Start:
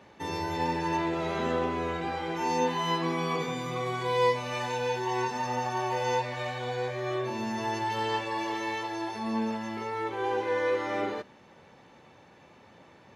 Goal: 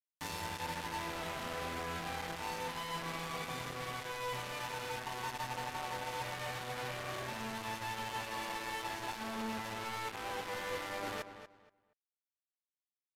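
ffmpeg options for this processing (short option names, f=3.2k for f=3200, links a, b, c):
-filter_complex "[0:a]equalizer=f=370:t=o:w=0.64:g=-14,bandreject=f=50:t=h:w=6,bandreject=f=100:t=h:w=6,bandreject=f=150:t=h:w=6,bandreject=f=200:t=h:w=6,bandreject=f=250:t=h:w=6,areverse,acompressor=threshold=-41dB:ratio=12,areverse,acrusher=bits=6:mix=0:aa=0.000001,asplit=2[a][b];[b]adelay=237,lowpass=f=2.9k:p=1,volume=-10.5dB,asplit=2[c][d];[d]adelay=237,lowpass=f=2.9k:p=1,volume=0.24,asplit=2[e][f];[f]adelay=237,lowpass=f=2.9k:p=1,volume=0.24[g];[c][e][g]amix=inputs=3:normalize=0[h];[a][h]amix=inputs=2:normalize=0,aresample=32000,aresample=44100,adynamicequalizer=threshold=0.00112:dfrequency=4000:dqfactor=0.7:tfrequency=4000:tqfactor=0.7:attack=5:release=100:ratio=0.375:range=3:mode=cutabove:tftype=highshelf,volume=3dB"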